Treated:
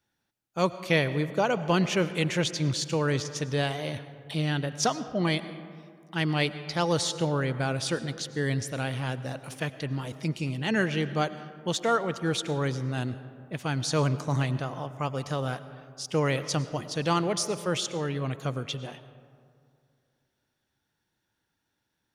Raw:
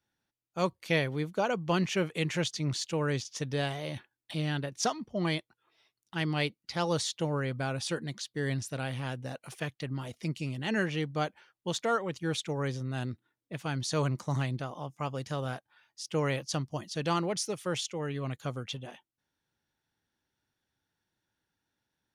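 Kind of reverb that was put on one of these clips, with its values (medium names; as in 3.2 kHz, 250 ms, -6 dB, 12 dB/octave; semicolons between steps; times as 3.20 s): algorithmic reverb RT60 2.3 s, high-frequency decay 0.4×, pre-delay 65 ms, DRR 13 dB; trim +4 dB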